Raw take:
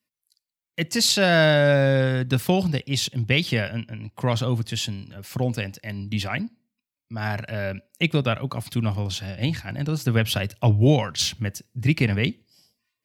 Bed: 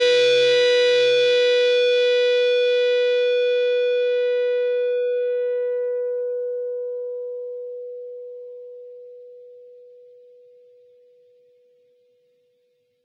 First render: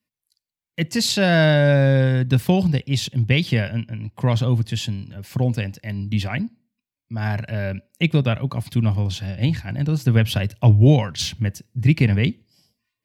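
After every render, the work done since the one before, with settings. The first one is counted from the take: tone controls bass +6 dB, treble -3 dB; band-stop 1.3 kHz, Q 10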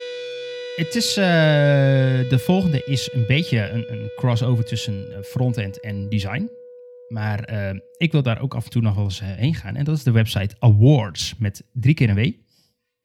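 add bed -14.5 dB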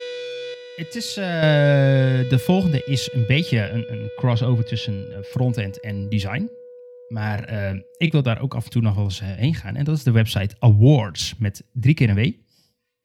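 0.54–1.43 s: feedback comb 630 Hz, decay 0.31 s; 3.66–5.33 s: Savitzky-Golay filter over 15 samples; 7.20–8.11 s: doubling 32 ms -11.5 dB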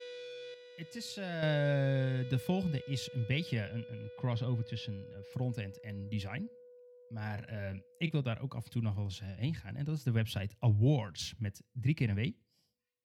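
trim -15 dB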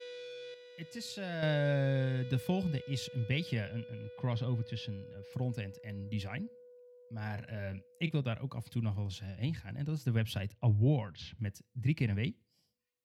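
10.52–11.39 s: distance through air 250 m

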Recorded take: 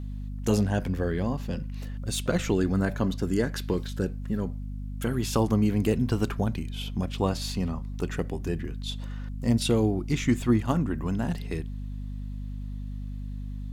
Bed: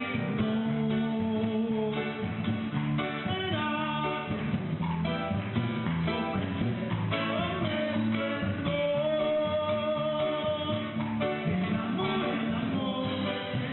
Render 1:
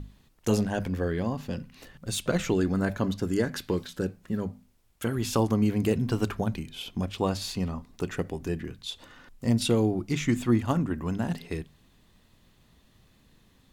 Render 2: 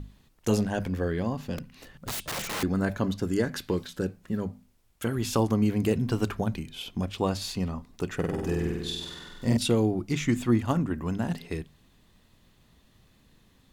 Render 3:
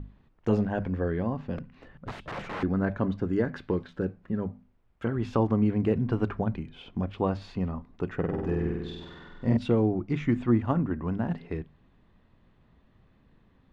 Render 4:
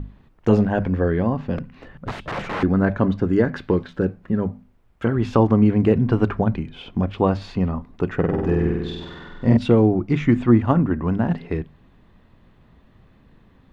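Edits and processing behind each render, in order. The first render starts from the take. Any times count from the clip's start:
hum notches 50/100/150/200/250 Hz
1.57–2.63 s: integer overflow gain 27.5 dB; 8.15–9.57 s: flutter echo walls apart 8.3 m, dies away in 1.3 s
low-pass 1.8 kHz 12 dB/octave
trim +8.5 dB

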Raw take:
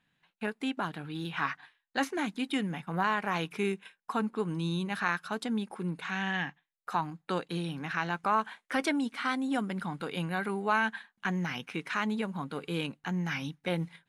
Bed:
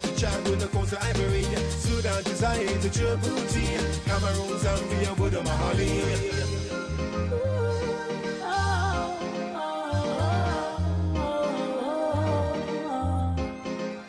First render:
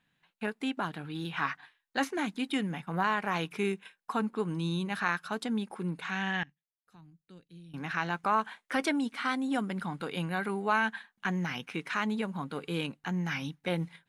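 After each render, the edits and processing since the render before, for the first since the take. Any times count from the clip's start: 6.43–7.74 s: amplifier tone stack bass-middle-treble 10-0-1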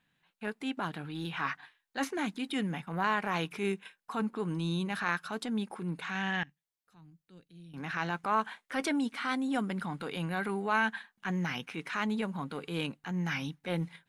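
transient shaper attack -6 dB, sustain +1 dB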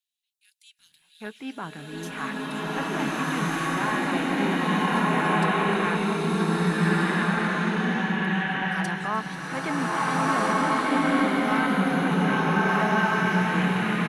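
bands offset in time highs, lows 790 ms, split 3.8 kHz; swelling reverb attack 1590 ms, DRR -10 dB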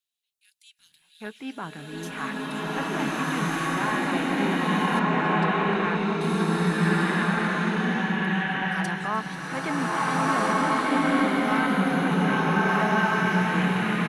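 4.99–6.21 s: distance through air 110 m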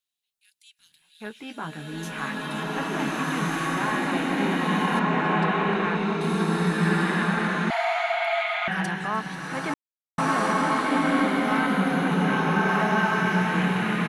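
1.29–2.64 s: doubling 13 ms -4 dB; 7.70–8.68 s: frequency shift +490 Hz; 9.74–10.18 s: mute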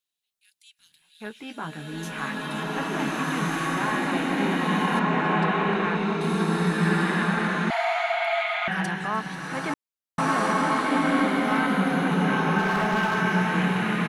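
12.58–13.22 s: hard clipper -19 dBFS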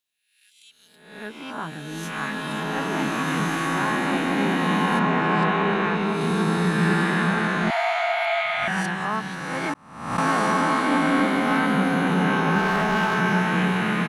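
reverse spectral sustain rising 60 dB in 0.74 s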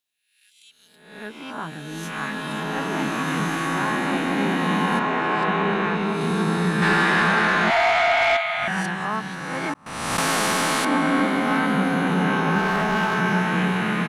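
4.99–5.48 s: peaking EQ 180 Hz -10.5 dB 0.67 oct; 6.82–8.37 s: overdrive pedal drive 14 dB, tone 4.8 kHz, clips at -9.5 dBFS; 9.86–10.85 s: spectrum-flattening compressor 2:1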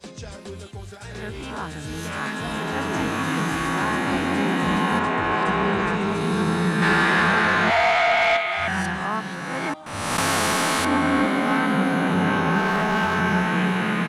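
add bed -11 dB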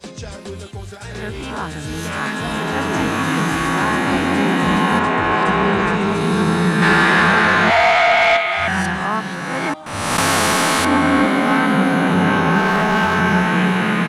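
trim +5.5 dB

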